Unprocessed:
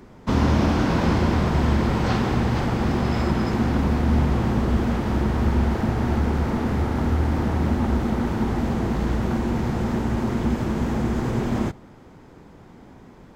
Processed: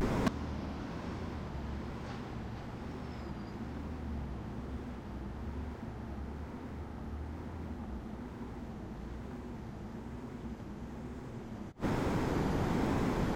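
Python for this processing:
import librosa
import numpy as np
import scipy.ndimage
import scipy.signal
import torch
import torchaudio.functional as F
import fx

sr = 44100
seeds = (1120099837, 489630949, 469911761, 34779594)

y = fx.vibrato(x, sr, rate_hz=1.1, depth_cents=100.0)
y = fx.gate_flip(y, sr, shuts_db=-18.0, range_db=-35)
y = np.clip(y, -10.0 ** (-37.5 / 20.0), 10.0 ** (-37.5 / 20.0))
y = y * 10.0 ** (14.5 / 20.0)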